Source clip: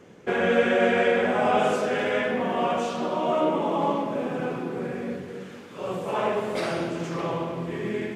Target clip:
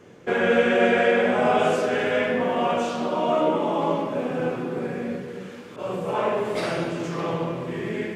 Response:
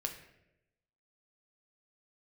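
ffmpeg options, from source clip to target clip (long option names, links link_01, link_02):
-filter_complex "[1:a]atrim=start_sample=2205,atrim=end_sample=6174[link_01];[0:a][link_01]afir=irnorm=-1:irlink=0,asettb=1/sr,asplit=3[link_02][link_03][link_04];[link_02]atrim=end=5.764[link_05];[link_03]atrim=start=5.76:end=6.45,asetpts=PTS-STARTPTS,afade=type=in:duration=0.004:curve=qsin,afade=type=out:start_time=0.686:duration=0.004:curve=qsin,adynamicequalizer=threshold=0.00794:dfrequency=2000:dqfactor=0.7:tfrequency=2000:tqfactor=0.7:attack=5:release=100:ratio=0.375:range=1.5:mode=cutabove:tftype=highshelf[link_06];[link_04]atrim=start=6.446[link_07];[link_05][link_06]acrossfade=duration=0.004:curve1=hsin:curve2=qsin[link_08];[link_08][link_07]acrossfade=duration=0.004:curve1=qsin:curve2=hsin,volume=1.5dB"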